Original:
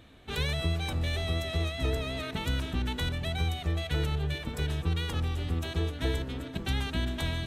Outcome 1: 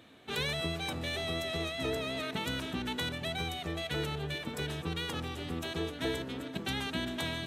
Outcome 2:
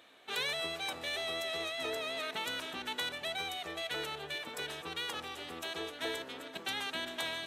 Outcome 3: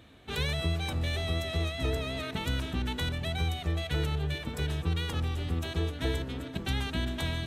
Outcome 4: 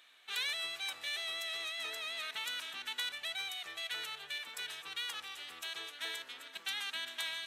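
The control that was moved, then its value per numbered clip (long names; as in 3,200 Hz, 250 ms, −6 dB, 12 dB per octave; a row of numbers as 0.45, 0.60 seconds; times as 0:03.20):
high-pass filter, corner frequency: 170, 530, 53, 1,500 Hertz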